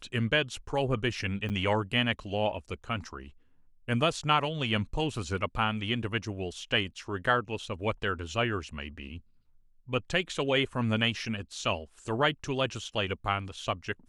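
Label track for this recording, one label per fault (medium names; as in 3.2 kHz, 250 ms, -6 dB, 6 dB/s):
1.490000	1.500000	dropout 8.9 ms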